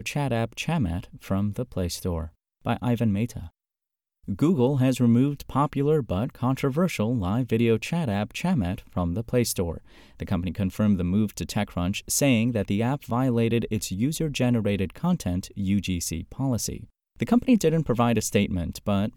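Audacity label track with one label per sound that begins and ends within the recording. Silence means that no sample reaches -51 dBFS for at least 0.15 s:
2.650000	3.490000	sound
4.240000	16.900000	sound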